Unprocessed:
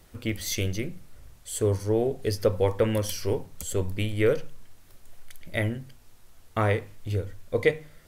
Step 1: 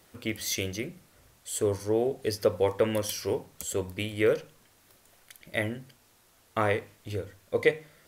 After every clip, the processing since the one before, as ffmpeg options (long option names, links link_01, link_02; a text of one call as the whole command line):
ffmpeg -i in.wav -af "highpass=frequency=250:poles=1" out.wav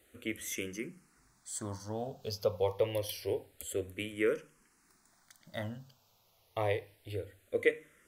ffmpeg -i in.wav -filter_complex "[0:a]asplit=2[link_01][link_02];[link_02]afreqshift=-0.27[link_03];[link_01][link_03]amix=inputs=2:normalize=1,volume=-4dB" out.wav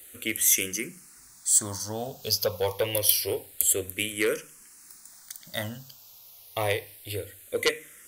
ffmpeg -i in.wav -af "aeval=exprs='0.211*sin(PI/2*2*val(0)/0.211)':channel_layout=same,crystalizer=i=5.5:c=0,volume=-6dB" out.wav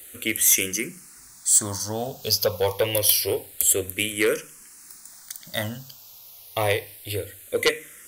ffmpeg -i in.wav -af "asoftclip=type=tanh:threshold=-11dB,volume=4.5dB" out.wav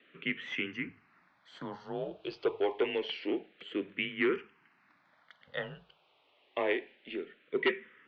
ffmpeg -i in.wav -af "highpass=frequency=260:width_type=q:width=0.5412,highpass=frequency=260:width_type=q:width=1.307,lowpass=frequency=3100:width_type=q:width=0.5176,lowpass=frequency=3100:width_type=q:width=0.7071,lowpass=frequency=3100:width_type=q:width=1.932,afreqshift=-80,volume=-7dB" out.wav